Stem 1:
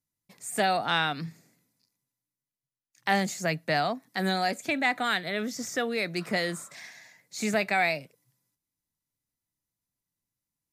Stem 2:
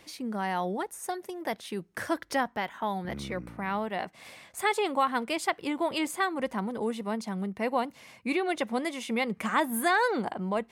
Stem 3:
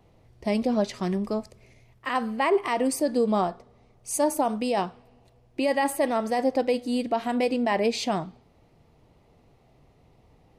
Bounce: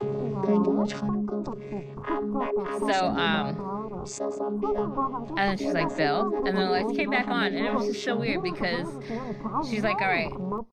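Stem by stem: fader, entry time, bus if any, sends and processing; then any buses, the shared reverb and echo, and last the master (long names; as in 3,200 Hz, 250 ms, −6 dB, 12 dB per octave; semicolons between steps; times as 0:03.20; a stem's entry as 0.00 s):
−0.5 dB, 2.30 s, no send, Savitzky-Golay smoothing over 15 samples
+1.5 dB, 0.00 s, no send, lower of the sound and its delayed copy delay 0.77 ms; elliptic low-pass filter 1,100 Hz, stop band 40 dB
−5.0 dB, 0.00 s, no send, channel vocoder with a chord as carrier bare fifth, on C#3; hollow resonant body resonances 390/1,200 Hz, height 15 dB, ringing for 85 ms; envelope flattener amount 70%; automatic ducking −11 dB, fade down 1.35 s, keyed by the second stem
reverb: not used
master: no processing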